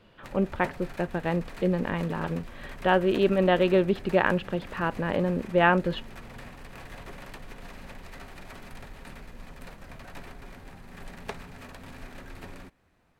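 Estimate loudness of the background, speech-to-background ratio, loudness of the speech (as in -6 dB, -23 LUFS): -45.0 LUFS, 19.0 dB, -26.0 LUFS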